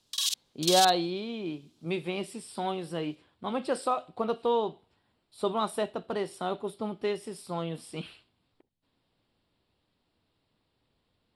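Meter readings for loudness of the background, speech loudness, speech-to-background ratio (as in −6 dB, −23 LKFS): −29.0 LKFS, −31.5 LKFS, −2.5 dB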